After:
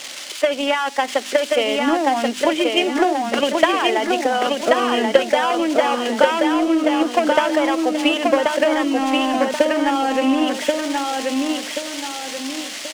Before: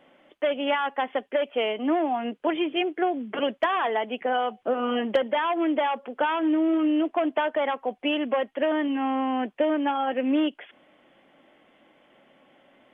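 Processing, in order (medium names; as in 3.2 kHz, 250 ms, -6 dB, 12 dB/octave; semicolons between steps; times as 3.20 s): zero-crossing glitches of -27.5 dBFS; treble shelf 2.9 kHz +9.5 dB; de-hum 49.93 Hz, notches 6; transient shaper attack +10 dB, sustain -3 dB; in parallel at -1 dB: compressor with a negative ratio -28 dBFS; on the sum: distance through air 100 m; on a send: feedback delay 1082 ms, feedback 40%, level -3 dB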